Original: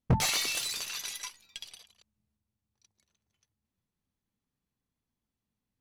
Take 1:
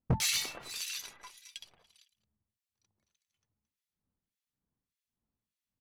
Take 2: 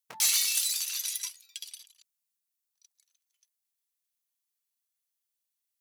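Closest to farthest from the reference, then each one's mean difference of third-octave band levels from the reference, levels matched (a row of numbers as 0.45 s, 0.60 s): 1, 2; 6.0 dB, 10.0 dB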